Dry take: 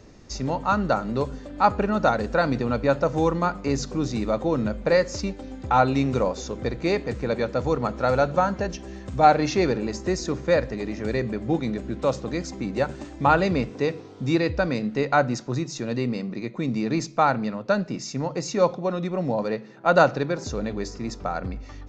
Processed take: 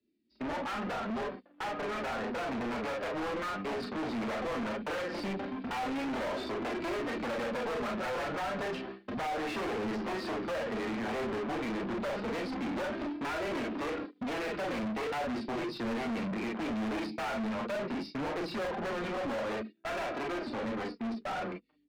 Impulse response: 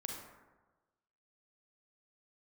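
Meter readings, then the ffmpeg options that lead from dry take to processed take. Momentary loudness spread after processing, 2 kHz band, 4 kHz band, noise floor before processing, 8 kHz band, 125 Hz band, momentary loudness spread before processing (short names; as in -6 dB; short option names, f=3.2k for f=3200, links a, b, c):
3 LU, -7.5 dB, -6.5 dB, -42 dBFS, n/a, -17.0 dB, 9 LU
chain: -filter_complex "[0:a]acrossover=split=280|3400[a][b][c];[b]aeval=exprs='sgn(val(0))*max(abs(val(0))-0.00944,0)':c=same[d];[a][d][c]amix=inputs=3:normalize=0,acompressor=threshold=-22dB:ratio=6,aresample=11025,aeval=exprs='0.075*(abs(mod(val(0)/0.075+3,4)-2)-1)':c=same,aresample=44100,flanger=delay=3:depth=6.7:regen=27:speed=0.15:shape=sinusoidal,acrossover=split=240 3100:gain=0.141 1 0.112[e][f][g];[e][f][g]amix=inputs=3:normalize=0,dynaudnorm=f=830:g=9:m=6.5dB,agate=range=-25dB:threshold=-44dB:ratio=16:detection=peak,equalizer=f=230:t=o:w=0.21:g=12.5[h];[1:a]atrim=start_sample=2205,atrim=end_sample=3087,asetrate=61740,aresample=44100[i];[h][i]afir=irnorm=-1:irlink=0,asplit=2[j][k];[k]highpass=f=720:p=1,volume=39dB,asoftclip=type=tanh:threshold=-18.5dB[l];[j][l]amix=inputs=2:normalize=0,lowpass=f=2.1k:p=1,volume=-6dB,volume=-9dB"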